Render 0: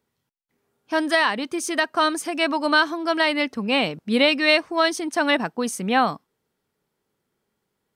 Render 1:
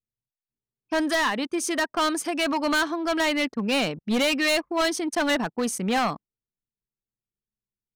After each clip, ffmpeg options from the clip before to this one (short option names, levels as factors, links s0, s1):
-af "anlmdn=0.631,volume=9.44,asoftclip=hard,volume=0.106"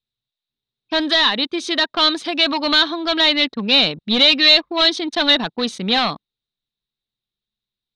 -af "lowpass=f=3800:t=q:w=10,volume=1.41"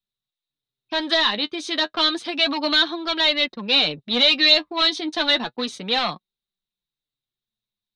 -filter_complex "[0:a]flanger=delay=5.1:depth=4.9:regen=34:speed=0.31:shape=sinusoidal,acrossover=split=240|1800[s0][s1][s2];[s0]asoftclip=type=tanh:threshold=0.0126[s3];[s3][s1][s2]amix=inputs=3:normalize=0"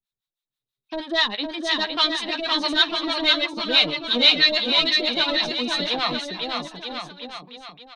-filter_complex "[0:a]acrossover=split=670[s0][s1];[s0]aeval=exprs='val(0)*(1-1/2+1/2*cos(2*PI*6.2*n/s))':c=same[s2];[s1]aeval=exprs='val(0)*(1-1/2-1/2*cos(2*PI*6.2*n/s))':c=same[s3];[s2][s3]amix=inputs=2:normalize=0,aecho=1:1:510|943.5|1312|1625|1891:0.631|0.398|0.251|0.158|0.1,volume=1.33"